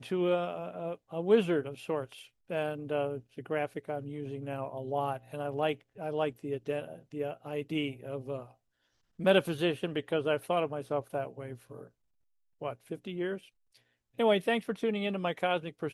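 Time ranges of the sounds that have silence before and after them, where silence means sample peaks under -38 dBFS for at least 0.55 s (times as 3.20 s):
9.19–11.83 s
12.62–13.37 s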